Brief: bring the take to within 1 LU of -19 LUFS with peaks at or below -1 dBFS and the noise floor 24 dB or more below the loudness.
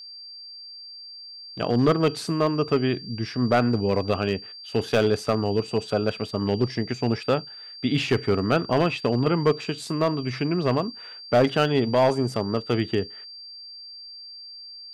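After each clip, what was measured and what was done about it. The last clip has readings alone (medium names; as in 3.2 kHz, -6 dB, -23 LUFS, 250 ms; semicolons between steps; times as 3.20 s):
clipped samples 0.5%; clipping level -12.5 dBFS; steady tone 4.7 kHz; tone level -39 dBFS; loudness -24.0 LUFS; peak level -12.5 dBFS; loudness target -19.0 LUFS
-> clip repair -12.5 dBFS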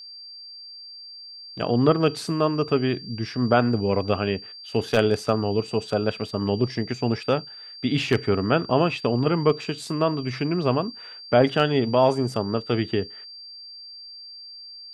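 clipped samples 0.0%; steady tone 4.7 kHz; tone level -39 dBFS
-> band-stop 4.7 kHz, Q 30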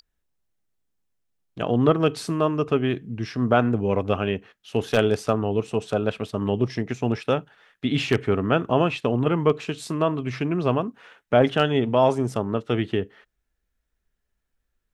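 steady tone not found; loudness -23.5 LUFS; peak level -3.5 dBFS; loudness target -19.0 LUFS
-> trim +4.5 dB; peak limiter -1 dBFS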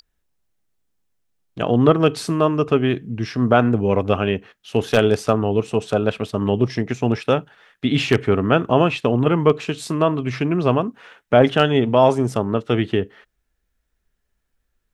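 loudness -19.5 LUFS; peak level -1.0 dBFS; noise floor -73 dBFS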